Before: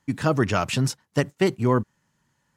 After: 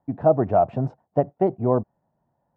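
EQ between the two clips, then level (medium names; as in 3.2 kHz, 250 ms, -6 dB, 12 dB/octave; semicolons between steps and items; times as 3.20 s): resonant low-pass 700 Hz, resonance Q 6.6; -3.0 dB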